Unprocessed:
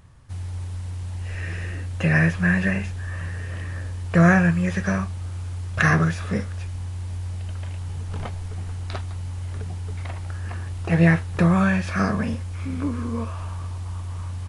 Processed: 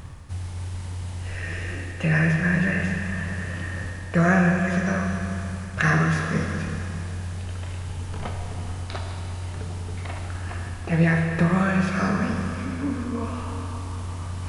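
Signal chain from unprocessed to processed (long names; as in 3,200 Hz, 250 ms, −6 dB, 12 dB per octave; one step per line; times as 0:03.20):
reversed playback
upward compression, threshold −20 dBFS
reversed playback
four-comb reverb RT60 3.1 s, combs from 25 ms, DRR 1.5 dB
level −3 dB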